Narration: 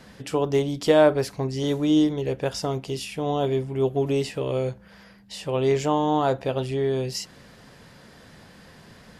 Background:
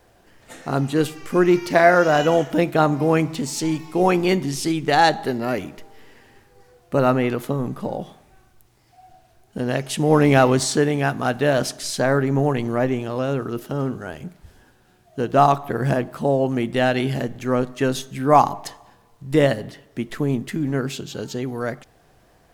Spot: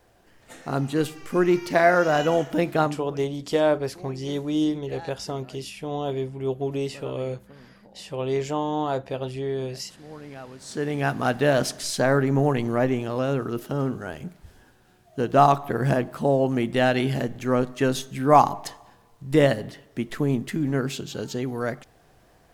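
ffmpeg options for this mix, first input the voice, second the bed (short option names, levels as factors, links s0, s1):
-filter_complex "[0:a]adelay=2650,volume=0.631[s0];[1:a]volume=10.6,afade=t=out:st=2.81:d=0.2:silence=0.0794328,afade=t=in:st=10.61:d=0.55:silence=0.0595662[s1];[s0][s1]amix=inputs=2:normalize=0"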